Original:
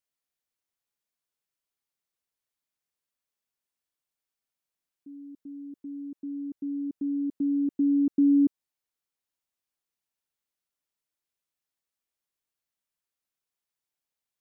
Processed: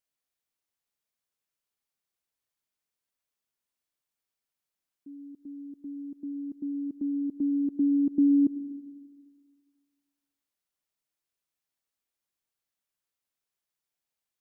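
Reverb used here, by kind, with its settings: digital reverb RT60 1.7 s, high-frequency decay 0.45×, pre-delay 30 ms, DRR 14 dB

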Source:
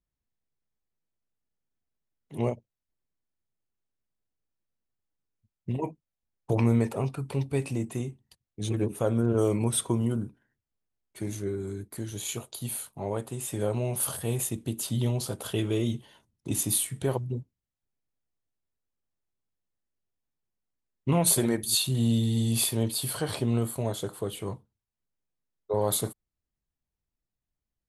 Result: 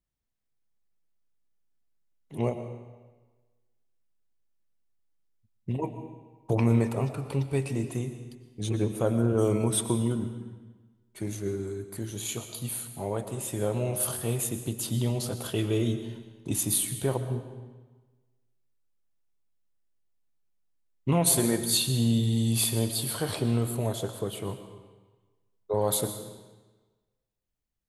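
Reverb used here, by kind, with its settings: digital reverb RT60 1.3 s, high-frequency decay 0.9×, pre-delay 75 ms, DRR 9 dB

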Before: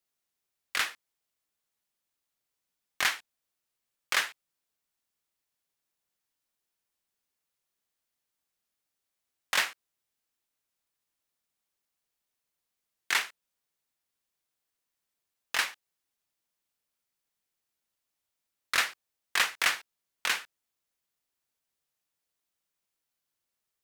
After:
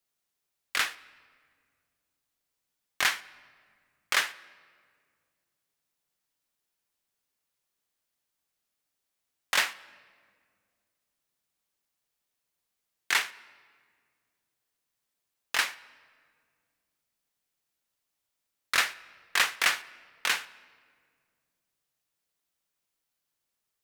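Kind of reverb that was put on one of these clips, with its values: shoebox room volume 3500 m³, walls mixed, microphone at 0.33 m; gain +1.5 dB

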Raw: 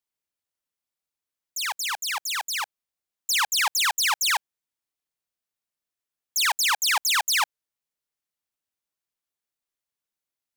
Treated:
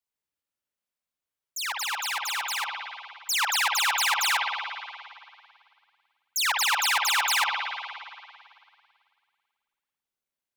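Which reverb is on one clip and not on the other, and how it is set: spring tank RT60 2.2 s, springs 54 ms, chirp 60 ms, DRR -0.5 dB; gain -3 dB

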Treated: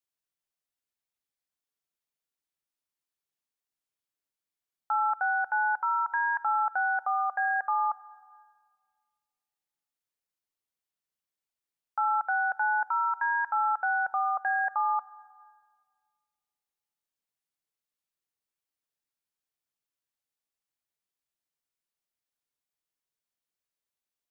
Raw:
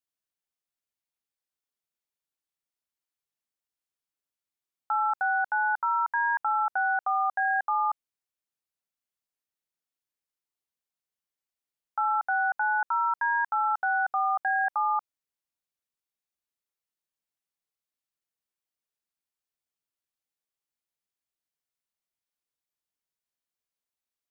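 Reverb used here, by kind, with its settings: shoebox room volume 3700 m³, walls mixed, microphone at 0.33 m; gain -1 dB

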